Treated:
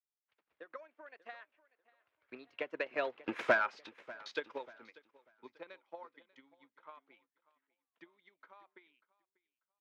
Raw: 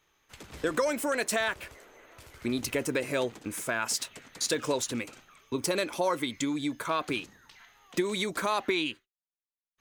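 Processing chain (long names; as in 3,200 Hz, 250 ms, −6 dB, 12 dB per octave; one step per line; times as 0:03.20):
source passing by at 0:03.46, 18 m/s, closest 1.4 metres
high-shelf EQ 5,800 Hz −10 dB
soft clipping −34 dBFS, distortion −7 dB
high-pass filter 560 Hz 6 dB per octave
high-frequency loss of the air 290 metres
transient designer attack +10 dB, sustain −9 dB
mid-hump overdrive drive 11 dB, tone 4,300 Hz, clips at −23 dBFS
repeating echo 591 ms, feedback 39%, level −16.5 dB
multiband upward and downward expander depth 40%
level +4 dB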